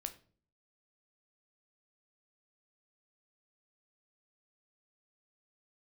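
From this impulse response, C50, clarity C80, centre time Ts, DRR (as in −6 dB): 15.0 dB, 19.0 dB, 8 ms, 7.5 dB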